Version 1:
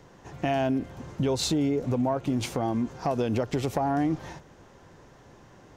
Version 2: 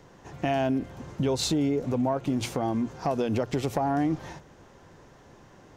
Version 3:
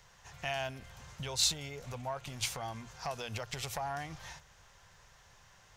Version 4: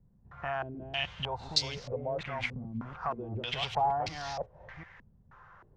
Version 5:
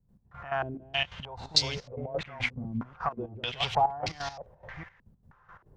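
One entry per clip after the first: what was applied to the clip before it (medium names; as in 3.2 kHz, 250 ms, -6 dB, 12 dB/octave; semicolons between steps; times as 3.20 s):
hum notches 60/120 Hz
amplifier tone stack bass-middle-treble 10-0-10; trim +2.5 dB
chunks repeated in reverse 372 ms, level -2 dB; step-sequenced low-pass 3.2 Hz 230–4800 Hz
trance gate ".x..x.xxx..x" 175 bpm -12 dB; trim +4.5 dB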